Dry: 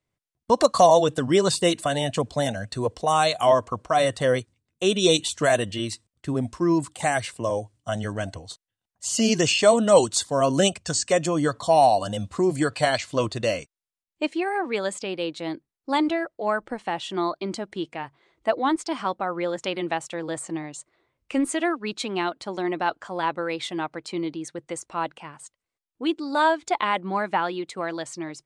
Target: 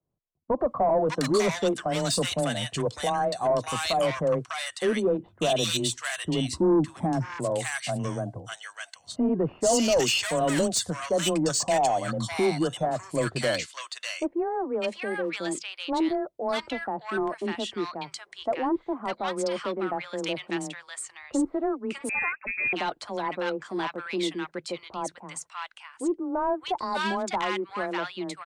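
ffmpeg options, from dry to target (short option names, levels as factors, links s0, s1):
-filter_complex "[0:a]asettb=1/sr,asplit=3[s0][s1][s2];[s0]atrim=end=6.484[s3];[s1]atrim=start=6.48:end=7.36,asetpts=PTS-STARTPTS,afade=t=in:d=0.004:c=qsin,afade=t=out:st=0.876:d=0.004:c=qsin,lowshelf=f=360:t=q:w=3:g=6.5[s4];[s2]atrim=start=7.356[s5];[s3][s4]acrossfade=d=0.004:c1=hsin:c2=qsin[s6];[s6][s5]acrossfade=d=0.004:c1=qsin:c2=hsin,afreqshift=16,asoftclip=type=tanh:threshold=0.133,acrossover=split=1100[s7][s8];[s8]adelay=600[s9];[s7][s9]amix=inputs=2:normalize=0,asettb=1/sr,asplit=3[s10][s11][s12];[s10]atrim=end=22.094[s13];[s11]atrim=start=22.09:end=22.73,asetpts=PTS-STARTPTS,afade=t=in:d=0.004:c=qsin,afade=t=out:st=0.636:d=0.004:c=qsin,lowpass=f=2400:t=q:w=0.5098,lowpass=f=2400:t=q:w=0.6013,lowpass=f=2400:t=q:w=0.9,lowpass=f=2400:t=q:w=2.563,afreqshift=-2800[s14];[s12]atrim=start=22.726[s15];[s13][s14]acrossfade=d=0.004:c1=hsin:c2=qsin[s16];[s16][s15]acrossfade=d=0.004:c1=qsin:c2=hsin"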